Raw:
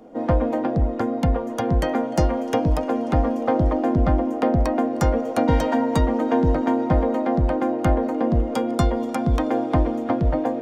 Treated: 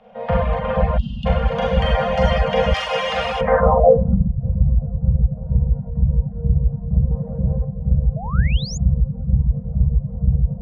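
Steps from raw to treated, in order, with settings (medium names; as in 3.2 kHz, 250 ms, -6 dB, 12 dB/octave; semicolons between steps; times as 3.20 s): elliptic band-stop 210–480 Hz; echo that smears into a reverb 471 ms, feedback 46%, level -3.5 dB; Schroeder reverb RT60 1.8 s, combs from 32 ms, DRR -6.5 dB; 0.98–1.26 s: time-frequency box 360–2600 Hz -30 dB; 0.59–1.46 s: treble shelf 5.1 kHz -5.5 dB; low-pass sweep 2.9 kHz -> 130 Hz, 3.41–4.34 s; 2.74–3.41 s: tilt EQ +4 dB/octave; reverb removal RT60 0.66 s; 7.11–7.65 s: overdrive pedal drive 19 dB, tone 1.3 kHz, clips at -6 dBFS; 8.16–8.78 s: painted sound rise 600–7200 Hz -31 dBFS; trim -1.5 dB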